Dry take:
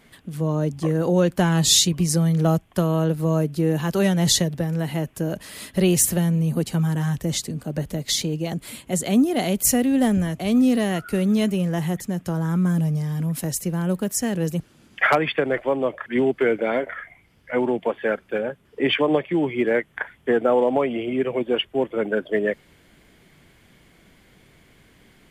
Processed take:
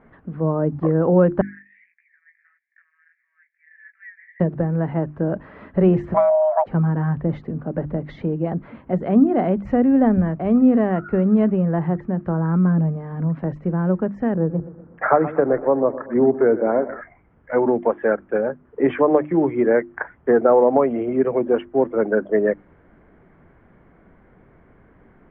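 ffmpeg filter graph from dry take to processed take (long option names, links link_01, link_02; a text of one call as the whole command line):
ffmpeg -i in.wav -filter_complex "[0:a]asettb=1/sr,asplit=3[link_01][link_02][link_03];[link_01]atrim=end=1.414[link_04];[link_02]atrim=start=1.41:end=4.4,asetpts=PTS-STARTPTS,afade=type=in:duration=0.004:curve=qsin,afade=type=out:start_time=2.986:duration=0.004:curve=qsin,asuperpass=centerf=2000:order=8:qfactor=3.1,flanger=delay=15.5:depth=4:speed=1.6[link_05];[link_03]atrim=start=4.396[link_06];[link_04][link_05]acrossfade=duration=0.004:curve1=hsin:curve2=qsin[link_07];[link_07][link_06]acrossfade=duration=0.004:curve1=qsin:curve2=hsin,asettb=1/sr,asplit=3[link_08][link_09][link_10];[link_08]atrim=end=6.144[link_11];[link_09]atrim=start=6.14:end=6.66,asetpts=PTS-STARTPTS,afade=type=in:duration=0.004:curve=qsin,afade=type=out:start_time=0.516:duration=0.004:curve=qsin,afreqshift=460,aecho=1:1:5.9:0.31,atrim=end_sample=22932[link_12];[link_10]atrim=start=6.656[link_13];[link_11][link_12]acrossfade=duration=0.004:curve1=hsin:curve2=qsin[link_14];[link_14][link_13]acrossfade=duration=0.004:curve1=qsin:curve2=hsin,asettb=1/sr,asplit=3[link_15][link_16][link_17];[link_15]atrim=end=14.344[link_18];[link_16]atrim=start=14.34:end=17.01,asetpts=PTS-STARTPTS,afade=type=in:duration=0.004:curve=qsin,afade=type=out:start_time=2.666:duration=0.004:curve=qsin,lowpass=1300,aecho=1:1:122|244|366|488|610:0.178|0.0925|0.0481|0.025|0.013,atrim=end_sample=117747[link_19];[link_17]atrim=start=17.006[link_20];[link_18][link_19]acrossfade=duration=0.004:curve1=hsin:curve2=qsin[link_21];[link_21][link_20]acrossfade=duration=0.004:curve1=qsin:curve2=hsin,lowpass=frequency=1500:width=0.5412,lowpass=frequency=1500:width=1.3066,equalizer=frequency=130:width_type=o:width=0.77:gain=-2.5,bandreject=frequency=50:width_type=h:width=6,bandreject=frequency=100:width_type=h:width=6,bandreject=frequency=150:width_type=h:width=6,bandreject=frequency=200:width_type=h:width=6,bandreject=frequency=250:width_type=h:width=6,bandreject=frequency=300:width_type=h:width=6,bandreject=frequency=350:width_type=h:width=6,volume=4.5dB" out.wav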